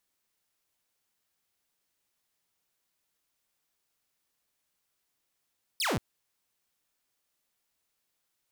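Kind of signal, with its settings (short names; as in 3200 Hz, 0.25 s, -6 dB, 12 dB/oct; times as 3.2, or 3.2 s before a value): laser zap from 5400 Hz, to 91 Hz, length 0.18 s saw, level -24 dB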